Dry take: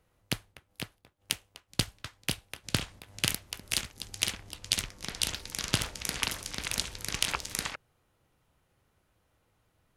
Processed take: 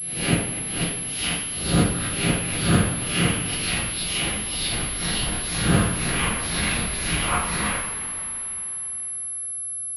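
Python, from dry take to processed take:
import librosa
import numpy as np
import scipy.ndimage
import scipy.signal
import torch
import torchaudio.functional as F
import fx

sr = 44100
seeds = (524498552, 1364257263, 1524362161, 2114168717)

p1 = fx.spec_swells(x, sr, rise_s=0.58)
p2 = fx.env_lowpass_down(p1, sr, base_hz=1600.0, full_db=-25.0)
p3 = fx.schmitt(p2, sr, flips_db=-28.5)
p4 = p2 + F.gain(torch.from_numpy(p3), -8.5).numpy()
p5 = fx.rev_double_slope(p4, sr, seeds[0], early_s=0.53, late_s=3.7, knee_db=-15, drr_db=-9.5)
y = fx.pwm(p5, sr, carrier_hz=11000.0)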